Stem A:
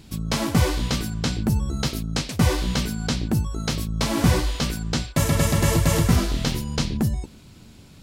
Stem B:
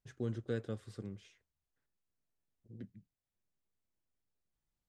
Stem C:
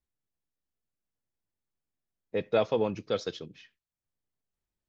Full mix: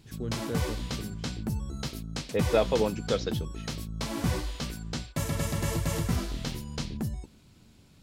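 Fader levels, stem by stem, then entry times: -10.0, +2.0, +1.5 dB; 0.00, 0.00, 0.00 s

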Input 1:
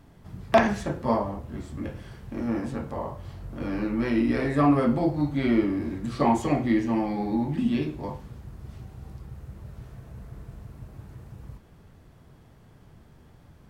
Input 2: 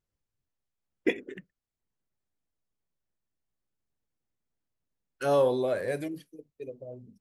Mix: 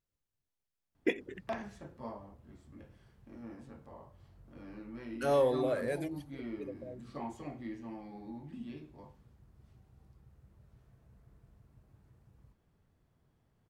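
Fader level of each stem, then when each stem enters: -19.5, -4.0 dB; 0.95, 0.00 s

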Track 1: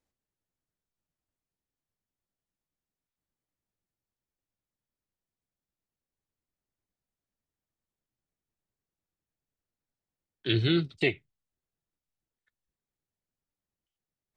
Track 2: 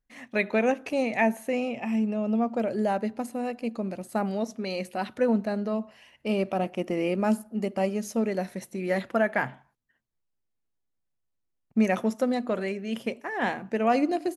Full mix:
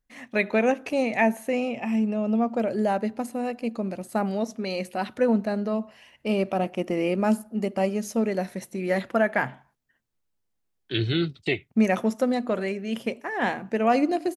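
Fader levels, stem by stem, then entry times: +0.5, +2.0 dB; 0.45, 0.00 s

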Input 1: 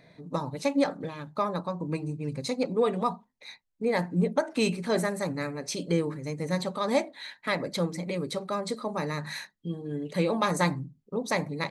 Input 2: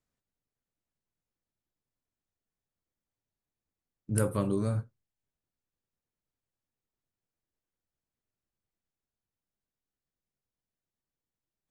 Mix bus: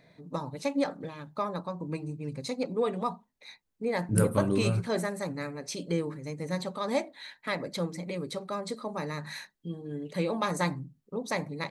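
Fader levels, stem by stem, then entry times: -3.5, +2.0 dB; 0.00, 0.00 s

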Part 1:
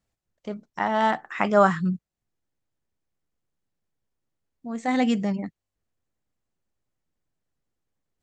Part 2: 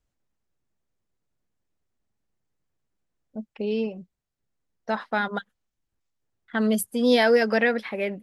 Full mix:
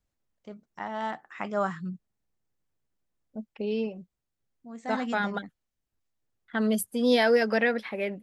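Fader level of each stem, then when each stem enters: -10.5, -3.0 dB; 0.00, 0.00 s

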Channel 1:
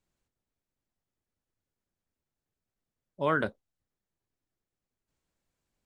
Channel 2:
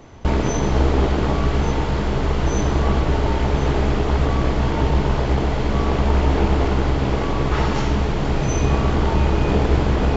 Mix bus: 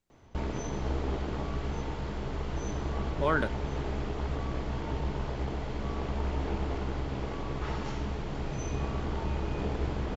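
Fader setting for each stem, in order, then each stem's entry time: -0.5, -14.5 dB; 0.00, 0.10 s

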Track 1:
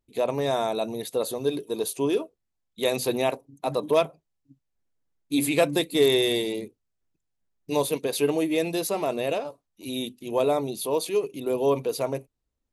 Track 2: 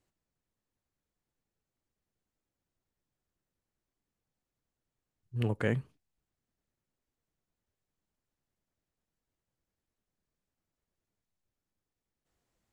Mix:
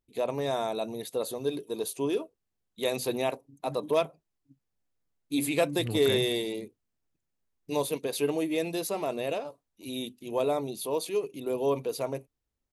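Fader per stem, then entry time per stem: -4.5, -3.5 dB; 0.00, 0.45 s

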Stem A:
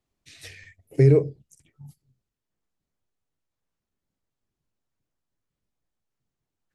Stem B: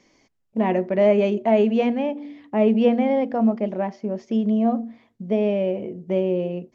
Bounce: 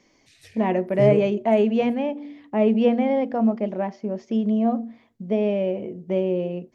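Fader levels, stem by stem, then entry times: -7.0, -1.0 dB; 0.00, 0.00 s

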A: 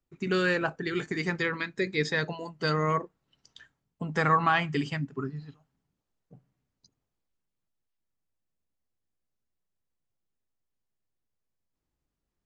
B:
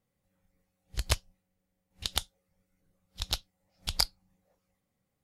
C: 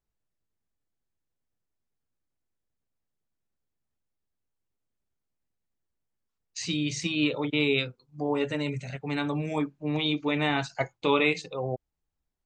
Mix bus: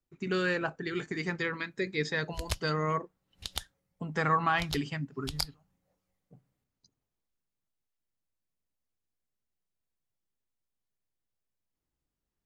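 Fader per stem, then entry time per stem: -3.5 dB, -5.5 dB, off; 0.00 s, 1.40 s, off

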